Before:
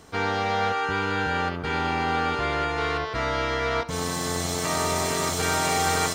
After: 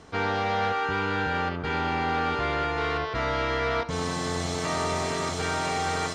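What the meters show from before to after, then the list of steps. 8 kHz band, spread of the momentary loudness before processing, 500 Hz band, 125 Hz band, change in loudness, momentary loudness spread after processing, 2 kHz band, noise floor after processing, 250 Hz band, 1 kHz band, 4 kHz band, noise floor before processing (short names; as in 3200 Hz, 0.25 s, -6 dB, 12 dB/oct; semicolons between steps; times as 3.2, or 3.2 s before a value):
-8.5 dB, 4 LU, -1.5 dB, -1.0 dB, -2.0 dB, 2 LU, -2.0 dB, -32 dBFS, -1.5 dB, -1.5 dB, -3.5 dB, -32 dBFS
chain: vocal rider 2 s; soft clip -18.5 dBFS, distortion -19 dB; air absorption 76 m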